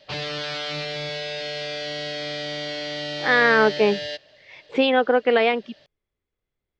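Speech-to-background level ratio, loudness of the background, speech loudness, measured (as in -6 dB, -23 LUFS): 9.0 dB, -29.0 LUFS, -20.0 LUFS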